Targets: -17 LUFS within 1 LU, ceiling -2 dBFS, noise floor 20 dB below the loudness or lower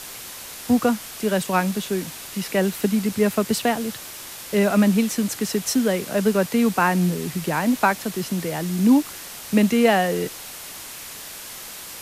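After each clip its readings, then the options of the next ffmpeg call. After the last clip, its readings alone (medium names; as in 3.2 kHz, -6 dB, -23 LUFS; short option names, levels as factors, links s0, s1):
noise floor -37 dBFS; noise floor target -42 dBFS; loudness -21.5 LUFS; peak level -5.0 dBFS; loudness target -17.0 LUFS
-> -af "afftdn=nr=6:nf=-37"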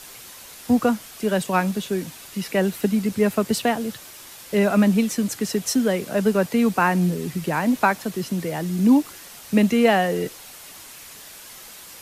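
noise floor -42 dBFS; loudness -21.5 LUFS; peak level -5.0 dBFS; loudness target -17.0 LUFS
-> -af "volume=1.68,alimiter=limit=0.794:level=0:latency=1"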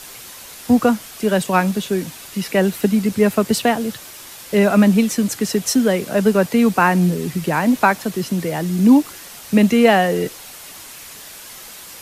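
loudness -17.0 LUFS; peak level -2.0 dBFS; noise floor -38 dBFS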